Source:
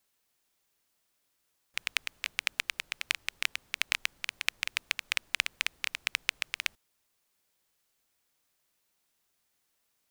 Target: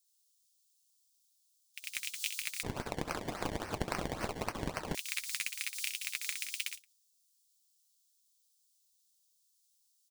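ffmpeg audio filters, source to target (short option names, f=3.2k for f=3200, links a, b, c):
-filter_complex "[0:a]highpass=690,aexciter=amount=14.8:drive=9.8:freq=3.2k,acontrast=84,alimiter=limit=-12dB:level=0:latency=1:release=83,flanger=delay=5.7:depth=2.8:regen=56:speed=1.6:shape=sinusoidal,aecho=1:1:64.14|174.9:0.708|0.562,agate=range=-34dB:threshold=-30dB:ratio=16:detection=peak,asettb=1/sr,asplit=3[a][b][c];[a]atrim=end=2.634[d];[b]atrim=start=2.63:end=4.95,asetpts=PTS-STARTPTS,afade=t=in:d=0.004:c=qsin,afade=t=out:st=2.316:d=0.004:c=qsin,acrusher=samples=24:mix=1:aa=0.000001:lfo=1:lforange=24:lforate=3.6[e];[c]atrim=start=4.946[f];[d][e]acrossfade=d=0.004:c1=hsin:c2=qsin[g];[g][f]acrossfade=d=0.004:c1=qsin:c2=hsin,equalizer=f=13k:t=o:w=0.24:g=-10"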